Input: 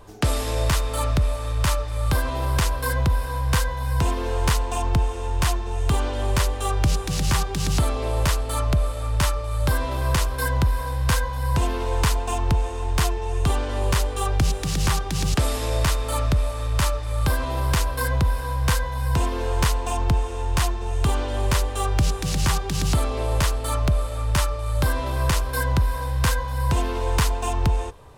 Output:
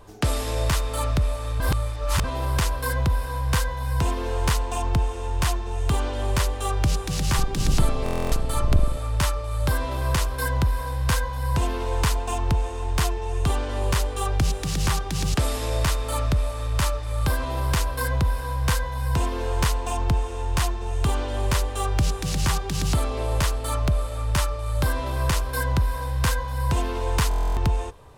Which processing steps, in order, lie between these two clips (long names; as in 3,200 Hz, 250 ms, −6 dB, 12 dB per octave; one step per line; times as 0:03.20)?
0:01.60–0:02.24: reverse
0:07.36–0:08.98: sub-octave generator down 2 octaves, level +3 dB
buffer that repeats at 0:08.04/0:27.29, samples 1,024, times 11
level −1.5 dB